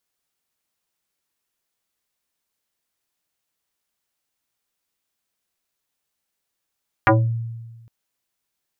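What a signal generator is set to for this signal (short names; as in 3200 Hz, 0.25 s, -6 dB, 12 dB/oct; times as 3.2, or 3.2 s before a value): FM tone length 0.81 s, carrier 115 Hz, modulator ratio 3.82, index 4.8, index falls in 0.28 s exponential, decay 1.35 s, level -9.5 dB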